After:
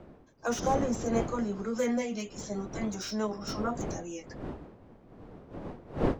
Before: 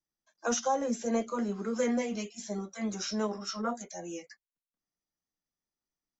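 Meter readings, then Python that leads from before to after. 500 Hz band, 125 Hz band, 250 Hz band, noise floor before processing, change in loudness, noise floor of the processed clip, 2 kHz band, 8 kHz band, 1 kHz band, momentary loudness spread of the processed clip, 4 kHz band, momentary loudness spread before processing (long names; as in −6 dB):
+1.5 dB, +8.5 dB, +1.5 dB, below −85 dBFS, 0.0 dB, −56 dBFS, +0.5 dB, can't be measured, +1.0 dB, 17 LU, −1.5 dB, 10 LU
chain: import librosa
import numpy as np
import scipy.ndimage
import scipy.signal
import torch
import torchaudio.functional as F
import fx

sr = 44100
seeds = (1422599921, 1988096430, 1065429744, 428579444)

y = fx.dmg_wind(x, sr, seeds[0], corner_hz=410.0, level_db=-38.0)
y = fx.slew_limit(y, sr, full_power_hz=84.0)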